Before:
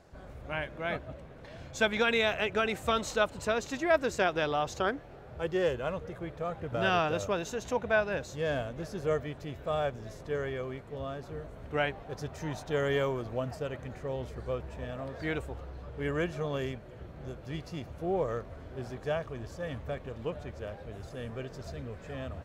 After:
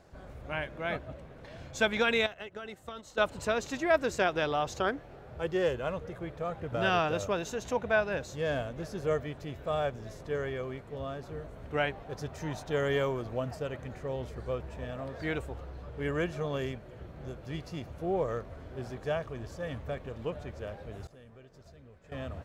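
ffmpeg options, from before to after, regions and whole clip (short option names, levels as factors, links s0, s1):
-filter_complex "[0:a]asettb=1/sr,asplit=3[s0][s1][s2];[s0]atrim=end=2.264[s3];[s1]atrim=start=2.26:end=3.18,asetpts=PTS-STARTPTS,afade=t=in:d=0.004:c=qsin,afade=t=out:st=0.916:d=0.004:c=qsin,bandreject=f=2400:w=7.6,agate=range=0.2:threshold=0.0224:ratio=16:release=100:detection=peak,acompressor=threshold=0.0126:ratio=8:attack=3.2:release=140:knee=1:detection=peak[s4];[s2]atrim=start=3.176[s5];[s3][s4]acrossfade=d=0.004:c1=hsin:c2=qsin[s6];[s6][s5]acrossfade=d=0.004:c1=qsin:c2=hsin,asettb=1/sr,asplit=3[s7][s8][s9];[s7]atrim=end=21.074[s10];[s8]atrim=start=21.07:end=22.12,asetpts=PTS-STARTPTS,afade=t=in:d=0.004:c=qsin,afade=t=out:st=1.046:d=0.004:c=qsin,agate=range=0.0224:threshold=0.01:ratio=3:release=100:detection=peak,acompressor=threshold=0.00224:ratio=4:attack=3.2:release=140:knee=1:detection=peak[s11];[s9]atrim=start=22.116[s12];[s10][s11]acrossfade=d=0.004:c1=hsin:c2=qsin[s13];[s13][s12]acrossfade=d=0.004:c1=qsin:c2=hsin"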